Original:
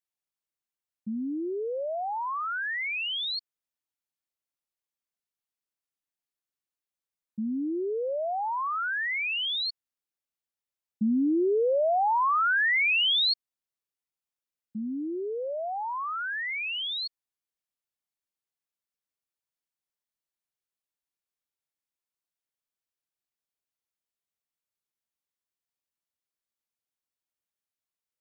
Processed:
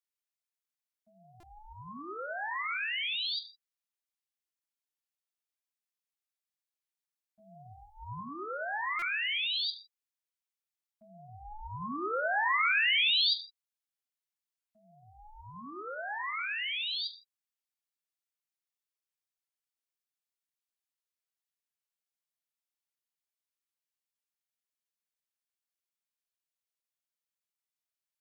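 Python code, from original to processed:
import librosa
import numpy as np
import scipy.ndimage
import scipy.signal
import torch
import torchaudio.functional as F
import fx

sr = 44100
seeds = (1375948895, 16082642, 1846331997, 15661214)

y = scipy.signal.sosfilt(scipy.signal.butter(2, 1200.0, 'highpass', fs=sr, output='sos'), x)
y = fx.comb(y, sr, ms=3.6, depth=0.84, at=(7.39, 8.21))
y = y * np.sin(2.0 * np.pi * 430.0 * np.arange(len(y)) / sr)
y = fx.rev_gated(y, sr, seeds[0], gate_ms=180, shape='falling', drr_db=8.0)
y = fx.buffer_glitch(y, sr, at_s=(1.4, 8.99), block=128, repeats=10)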